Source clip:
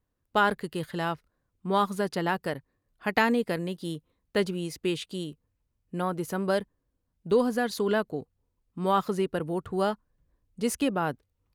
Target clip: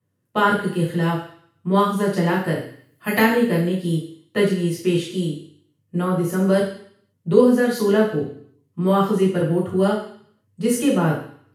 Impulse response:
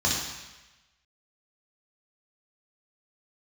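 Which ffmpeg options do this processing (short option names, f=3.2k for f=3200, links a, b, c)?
-filter_complex "[0:a]asplit=3[a][b][c];[a]afade=t=out:st=2.56:d=0.02[d];[b]aemphasis=mode=production:type=50fm,afade=t=in:st=2.56:d=0.02,afade=t=out:st=3.18:d=0.02[e];[c]afade=t=in:st=3.18:d=0.02[f];[d][e][f]amix=inputs=3:normalize=0[g];[1:a]atrim=start_sample=2205,asetrate=79380,aresample=44100[h];[g][h]afir=irnorm=-1:irlink=0,volume=-3dB"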